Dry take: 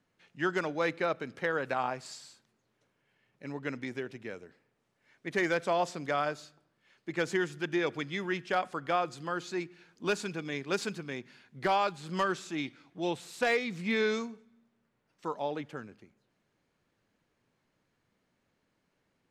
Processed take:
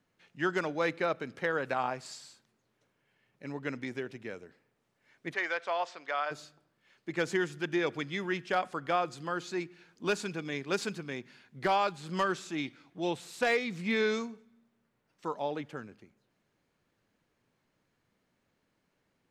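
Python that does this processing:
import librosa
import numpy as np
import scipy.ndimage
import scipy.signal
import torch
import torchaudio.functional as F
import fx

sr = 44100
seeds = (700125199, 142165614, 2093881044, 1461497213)

y = fx.bandpass_edges(x, sr, low_hz=720.0, high_hz=4100.0, at=(5.33, 6.3), fade=0.02)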